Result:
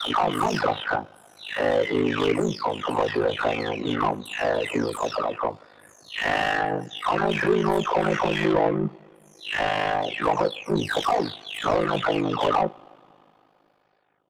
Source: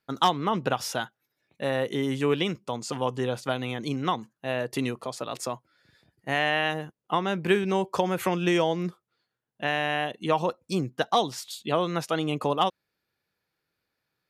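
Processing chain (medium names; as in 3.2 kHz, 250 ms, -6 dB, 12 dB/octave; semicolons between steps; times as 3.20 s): delay that grows with frequency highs early, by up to 477 ms; overdrive pedal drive 23 dB, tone 1.1 kHz, clips at -12.5 dBFS; two-slope reverb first 0.27 s, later 3.3 s, from -22 dB, DRR 12.5 dB; ring modulator 26 Hz; trim +2.5 dB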